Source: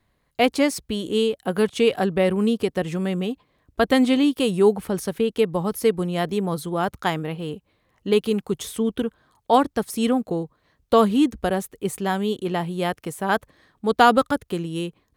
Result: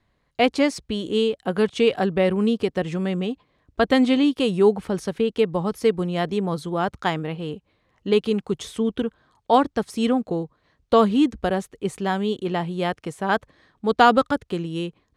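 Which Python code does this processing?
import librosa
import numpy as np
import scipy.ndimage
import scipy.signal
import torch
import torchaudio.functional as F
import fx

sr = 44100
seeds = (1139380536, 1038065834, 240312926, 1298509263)

y = scipy.signal.sosfilt(scipy.signal.butter(2, 6600.0, 'lowpass', fs=sr, output='sos'), x)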